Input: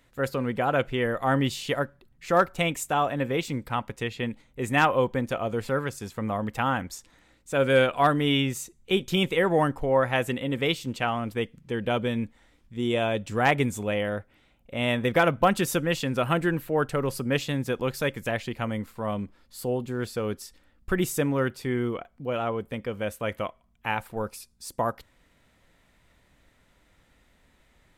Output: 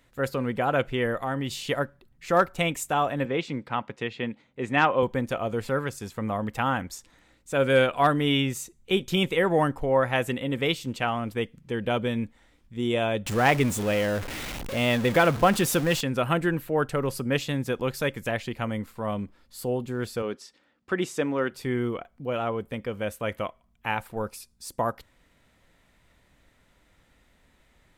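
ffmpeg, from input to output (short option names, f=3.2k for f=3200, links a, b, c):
-filter_complex "[0:a]asettb=1/sr,asplit=3[a][b][c];[a]atrim=end=1.204[d];[b]atrim=start=1.2:end=1.68,asetpts=PTS-STARTPTS,afade=t=in:d=0.004:c=qsin,afade=t=out:st=0.476:d=0.004:c=qsin,acompressor=threshold=-26dB:ratio=3:attack=3.2:release=140:knee=1:detection=peak[e];[c]atrim=start=1.676[f];[d][e]acrossfade=d=0.004:c1=hsin:c2=qsin[g];[g][f]acrossfade=d=0.004:c1=qsin:c2=hsin,asettb=1/sr,asplit=3[h][i][j];[h]atrim=end=3.254[k];[i]atrim=start=3.25:end=5.03,asetpts=PTS-STARTPTS,afade=t=in:d=0.004:c=qsin,afade=t=out:st=1.776:d=0.004:c=qsin,highpass=140,lowpass=4.4k[l];[j]atrim=start=5.026[m];[k][l]acrossfade=d=0.004:c1=hsin:c2=qsin[n];[n][m]acrossfade=d=0.004:c1=qsin:c2=hsin,asettb=1/sr,asplit=3[o][p][q];[o]atrim=end=13.264[r];[p]atrim=start=13.26:end=16.01,asetpts=PTS-STARTPTS,afade=t=in:d=0.004:c=qsin,afade=t=out:st=2.746:d=0.004:c=qsin,aeval=exprs='val(0)+0.5*0.0355*sgn(val(0))':c=same[s];[q]atrim=start=16.006[t];[r][s]acrossfade=d=0.004:c1=hsin:c2=qsin[u];[u][t]acrossfade=d=0.004:c1=qsin:c2=hsin,asettb=1/sr,asplit=3[v][w][x];[v]atrim=end=20.224[y];[w]atrim=start=20.22:end=21.52,asetpts=PTS-STARTPTS,afade=t=in:d=0.004:c=qsin,afade=t=out:st=1.296:d=0.004:c=qsin,highpass=230,lowpass=5.9k[z];[x]atrim=start=21.516[aa];[y][z]acrossfade=d=0.004:c1=hsin:c2=qsin[ab];[ab][aa]acrossfade=d=0.004:c1=qsin:c2=hsin"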